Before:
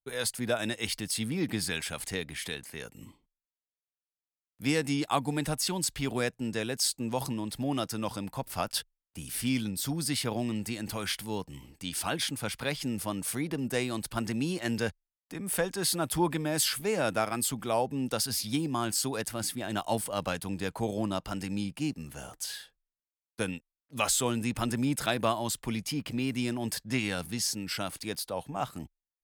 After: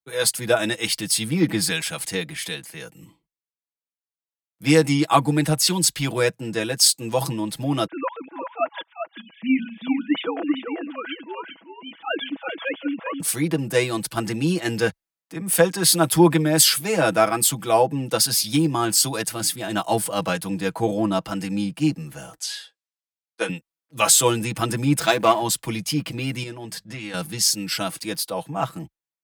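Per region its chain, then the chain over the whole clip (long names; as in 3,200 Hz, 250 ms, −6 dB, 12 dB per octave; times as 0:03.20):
0:07.86–0:13.20: three sine waves on the formant tracks + single-tap delay 390 ms −5.5 dB
0:22.40–0:23.49: band-pass filter 420–7,900 Hz + double-tracking delay 15 ms −6.5 dB
0:24.99–0:25.42: low-shelf EQ 140 Hz −7 dB + windowed peak hold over 3 samples
0:26.43–0:27.14: high-shelf EQ 8,900 Hz −9.5 dB + downward compressor 2.5 to 1, threshold −36 dBFS + mains-hum notches 50/100/150/200/250 Hz
whole clip: high-pass filter 78 Hz; comb filter 6.1 ms, depth 77%; multiband upward and downward expander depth 40%; level +7 dB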